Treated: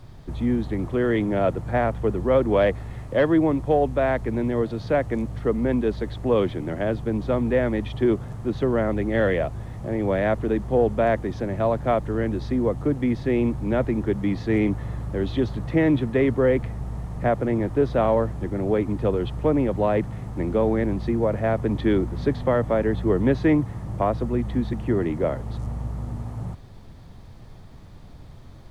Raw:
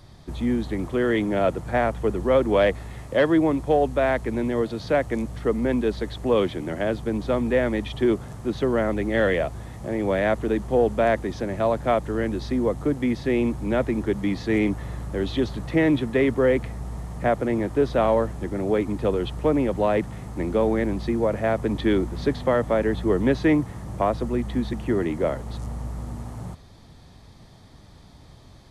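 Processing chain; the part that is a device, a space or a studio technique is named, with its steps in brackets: car interior (bell 110 Hz +5 dB 0.92 oct; high shelf 2900 Hz -8 dB; brown noise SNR 23 dB)

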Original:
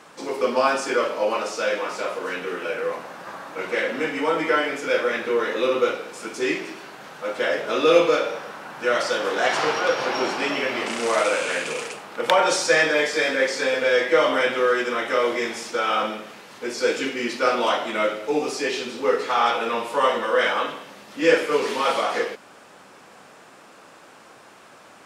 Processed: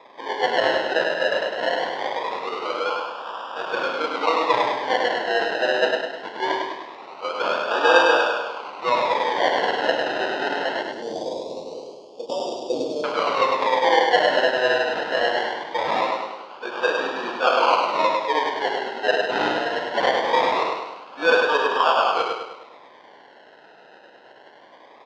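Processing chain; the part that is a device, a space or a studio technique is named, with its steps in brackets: circuit-bent sampling toy (decimation with a swept rate 30×, swing 60% 0.22 Hz; speaker cabinet 550–4200 Hz, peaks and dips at 1000 Hz +6 dB, 1500 Hz +3 dB, 2300 Hz -3 dB); 10.82–13.04 Chebyshev band-stop 410–6100 Hz, order 2; feedback echo 0.102 s, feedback 46%, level -4 dB; gain +2 dB

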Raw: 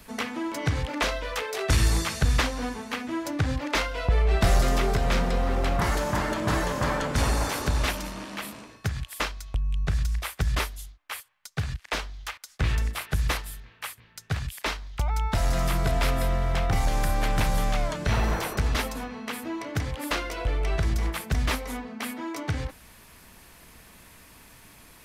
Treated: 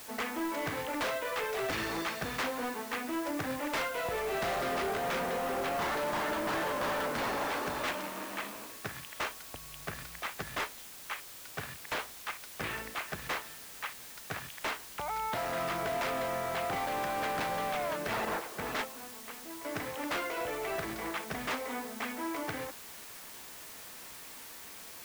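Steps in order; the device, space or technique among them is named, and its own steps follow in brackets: 18.25–19.65 gate -26 dBFS, range -11 dB; aircraft radio (BPF 330–2600 Hz; hard clip -30 dBFS, distortion -9 dB; white noise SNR 12 dB)

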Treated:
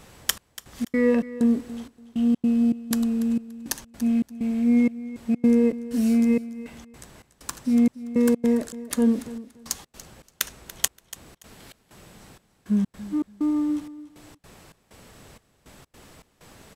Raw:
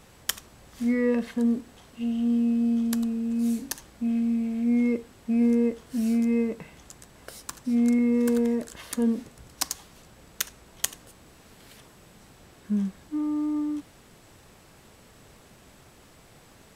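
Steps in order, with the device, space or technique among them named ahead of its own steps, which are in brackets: trance gate with a delay (step gate "xxxx...xx.xxx..x" 160 bpm -60 dB; feedback echo 0.287 s, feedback 21%, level -16 dB); gain +4 dB

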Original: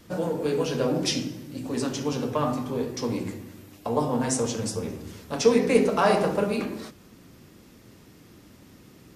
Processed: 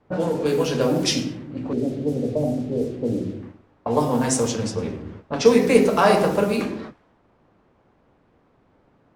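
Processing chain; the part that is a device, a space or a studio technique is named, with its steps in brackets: 1.73–3.43 steep low-pass 680 Hz 48 dB/oct; gate -42 dBFS, range -18 dB; cassette deck with a dynamic noise filter (white noise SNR 25 dB; low-pass opened by the level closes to 670 Hz, open at -21.5 dBFS); gain +4.5 dB

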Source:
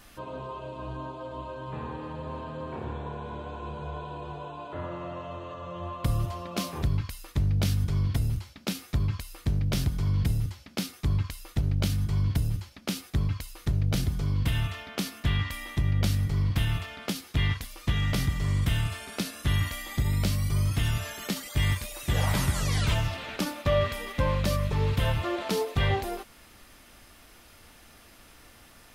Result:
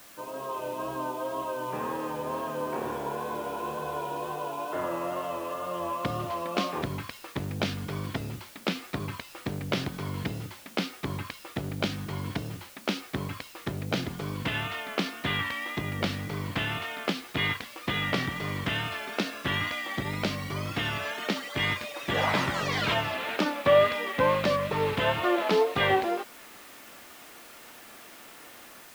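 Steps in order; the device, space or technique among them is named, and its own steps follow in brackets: dictaphone (BPF 280–3200 Hz; AGC gain up to 6.5 dB; wow and flutter; white noise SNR 21 dB)

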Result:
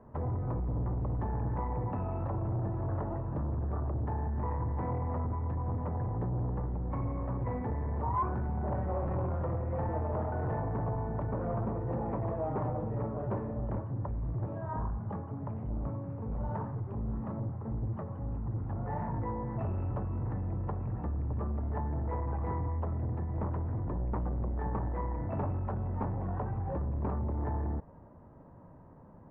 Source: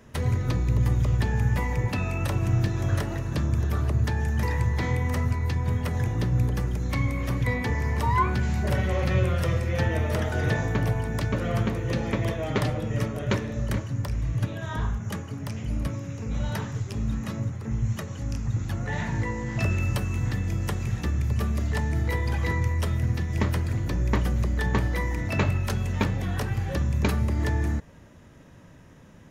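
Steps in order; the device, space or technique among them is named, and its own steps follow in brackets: 7.52–8.14 bell 960 Hz -5.5 dB 0.77 oct; overdriven synthesiser ladder filter (soft clip -25.5 dBFS, distortion -11 dB; ladder low-pass 1100 Hz, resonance 45%); gain +5 dB

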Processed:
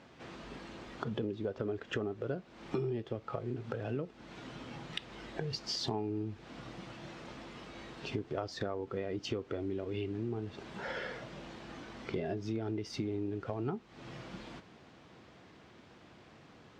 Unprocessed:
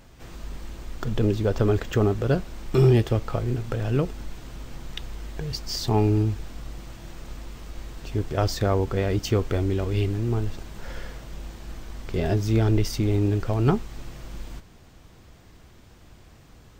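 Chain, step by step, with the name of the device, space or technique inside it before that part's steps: AM radio (BPF 180–3900 Hz; compressor 8:1, threshold -38 dBFS, peak gain reduction 20.5 dB; soft clip -23 dBFS, distortion -29 dB); spectral noise reduction 6 dB; gain +5 dB

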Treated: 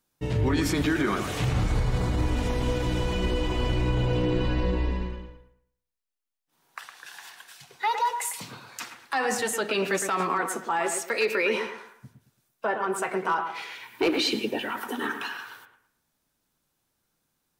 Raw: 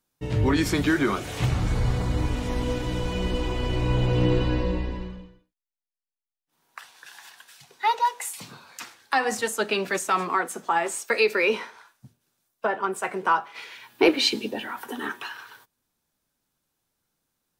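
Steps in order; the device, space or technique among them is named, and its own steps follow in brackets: clipper into limiter (hard clip -12.5 dBFS, distortion -25 dB; limiter -19 dBFS, peak gain reduction 6.5 dB); analogue delay 0.111 s, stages 2048, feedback 31%, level -7.5 dB; gain +1.5 dB

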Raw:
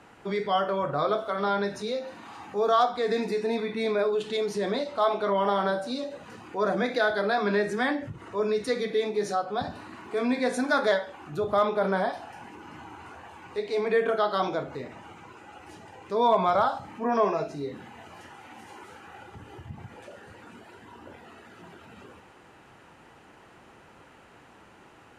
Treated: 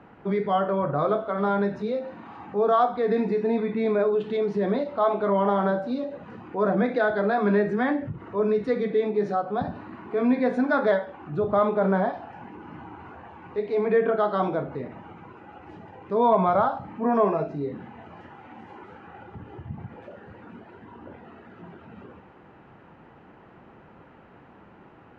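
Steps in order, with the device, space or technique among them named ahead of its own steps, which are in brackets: phone in a pocket (LPF 3000 Hz 12 dB/oct; bell 180 Hz +4.5 dB 0.97 oct; high shelf 2000 Hz -10 dB); gain +3 dB

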